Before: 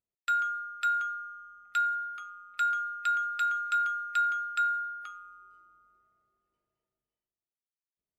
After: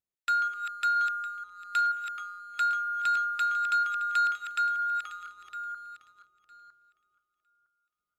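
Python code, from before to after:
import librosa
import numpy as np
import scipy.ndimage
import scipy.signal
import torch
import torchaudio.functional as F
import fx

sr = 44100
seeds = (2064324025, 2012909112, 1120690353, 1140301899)

y = fx.reverse_delay_fb(x, sr, ms=479, feedback_pct=43, wet_db=-8.0)
y = fx.leveller(y, sr, passes=1)
y = y * librosa.db_to_amplitude(-1.0)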